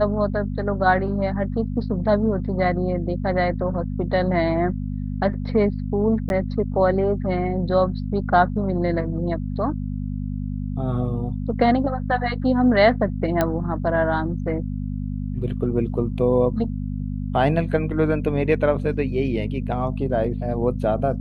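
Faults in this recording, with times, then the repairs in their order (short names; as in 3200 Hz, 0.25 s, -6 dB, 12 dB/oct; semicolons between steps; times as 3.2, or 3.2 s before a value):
hum 50 Hz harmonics 5 -27 dBFS
6.29–6.3 gap 11 ms
13.41 pop -7 dBFS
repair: de-click; de-hum 50 Hz, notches 5; interpolate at 6.29, 11 ms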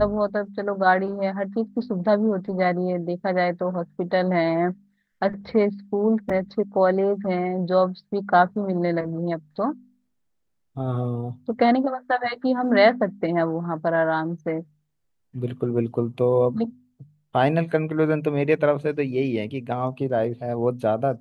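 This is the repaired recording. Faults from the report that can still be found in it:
none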